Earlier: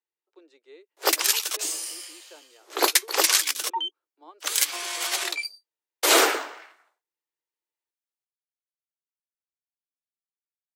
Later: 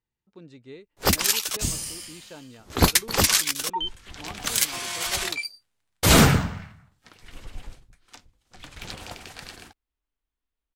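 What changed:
speech +5.0 dB; second sound: unmuted; master: remove steep high-pass 320 Hz 72 dB/octave

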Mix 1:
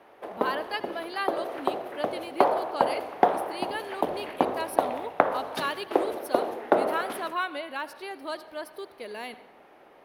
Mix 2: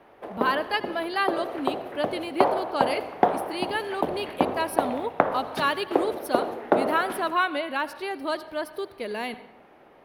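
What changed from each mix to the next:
speech +6.0 dB; master: add tone controls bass +7 dB, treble -3 dB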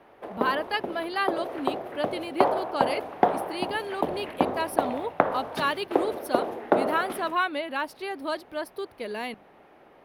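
reverb: off

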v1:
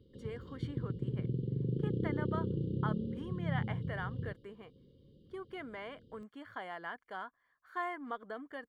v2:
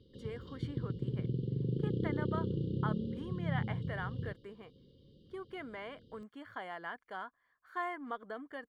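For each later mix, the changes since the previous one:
background: add treble shelf 2.7 kHz +10.5 dB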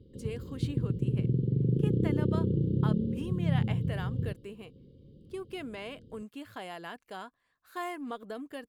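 speech: remove Savitzky-Golay filter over 41 samples; master: add tilt shelf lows +8 dB, about 910 Hz

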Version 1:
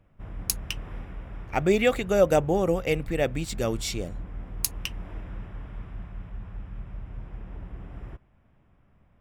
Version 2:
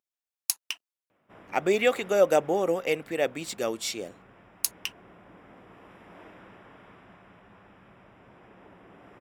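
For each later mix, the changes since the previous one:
background: entry +1.10 s; master: add high-pass 320 Hz 12 dB/octave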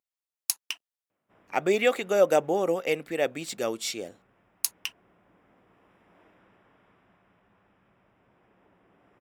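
background -11.0 dB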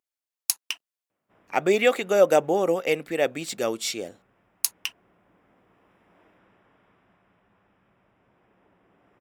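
speech +3.0 dB

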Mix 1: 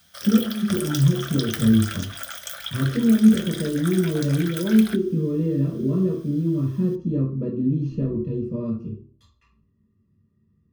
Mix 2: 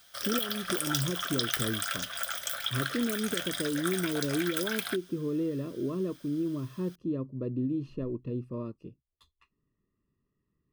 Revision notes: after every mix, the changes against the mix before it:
reverb: off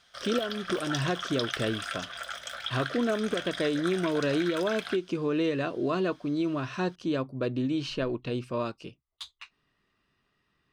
speech: remove boxcar filter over 58 samples; master: add distance through air 96 m

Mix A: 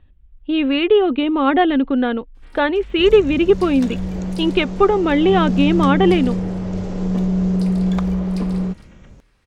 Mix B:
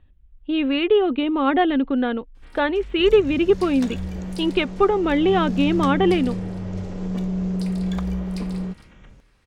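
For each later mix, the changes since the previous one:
speech -3.5 dB; second sound -6.5 dB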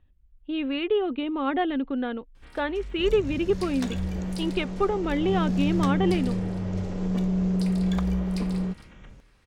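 speech -7.0 dB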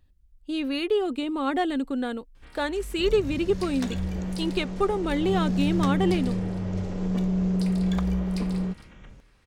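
speech: remove steep low-pass 3.5 kHz 48 dB/octave

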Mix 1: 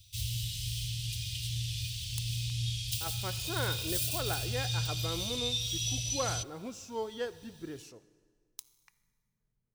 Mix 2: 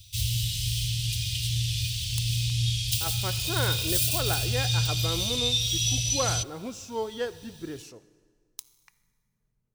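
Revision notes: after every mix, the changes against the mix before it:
speech +5.0 dB; background +7.5 dB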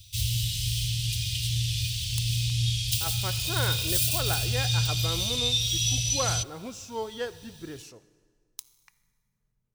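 speech: add peaking EQ 320 Hz -3.5 dB 1.6 oct

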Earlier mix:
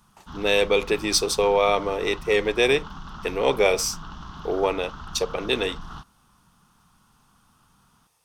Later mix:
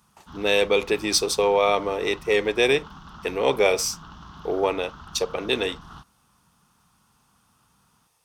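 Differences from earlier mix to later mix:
background -3.5 dB; master: add high-pass 46 Hz

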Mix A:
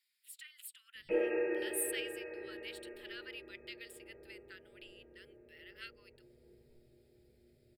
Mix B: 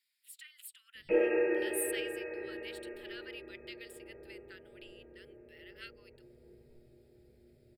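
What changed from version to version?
background +4.5 dB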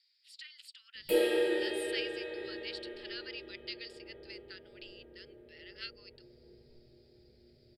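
speech: add resonant low-pass 4.8 kHz, resonance Q 6.3; background: remove brick-wall FIR low-pass 2.8 kHz

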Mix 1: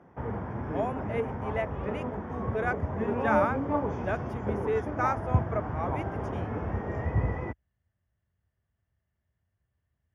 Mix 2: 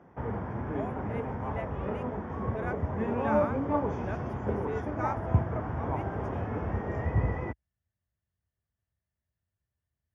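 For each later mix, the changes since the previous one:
speech -8.0 dB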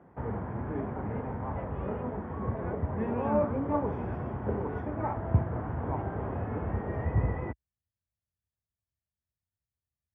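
speech -7.5 dB; master: add distance through air 330 m

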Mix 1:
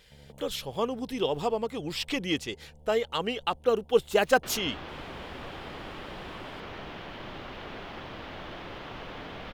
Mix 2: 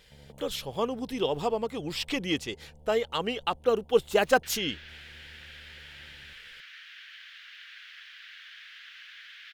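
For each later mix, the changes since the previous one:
second sound: add elliptic high-pass 1.6 kHz, stop band 50 dB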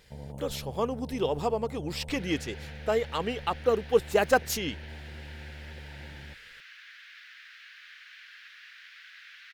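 first sound +11.5 dB; second sound: entry -2.30 s; master: add peaking EQ 3.2 kHz -6 dB 0.51 oct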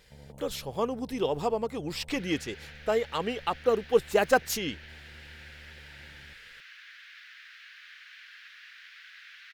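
first sound -8.5 dB

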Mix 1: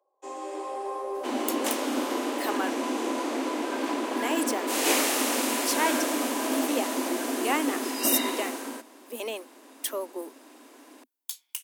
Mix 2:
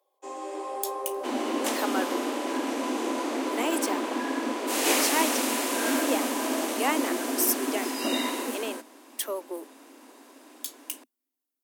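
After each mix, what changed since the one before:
speech: entry -0.65 s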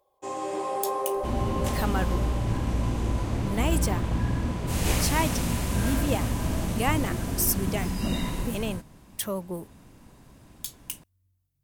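first sound +4.5 dB; second sound -6.0 dB; master: remove steep high-pass 250 Hz 96 dB/octave

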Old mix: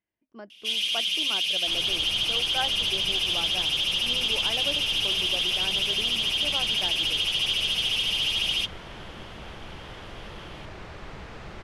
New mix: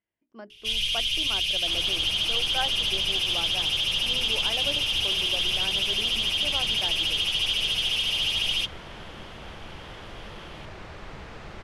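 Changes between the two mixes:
first sound: remove steep high-pass 160 Hz 96 dB/octave; master: add hum notches 60/120/180/240/300/360/420 Hz

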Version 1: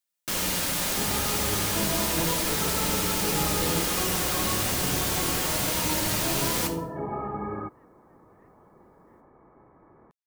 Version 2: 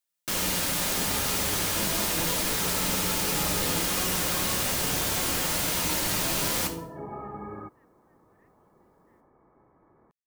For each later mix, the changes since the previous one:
second sound -6.0 dB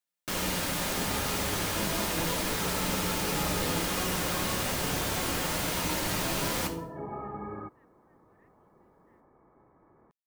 first sound: add treble shelf 3.4 kHz -7 dB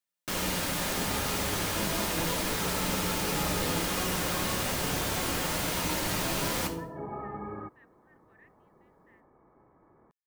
speech +11.0 dB

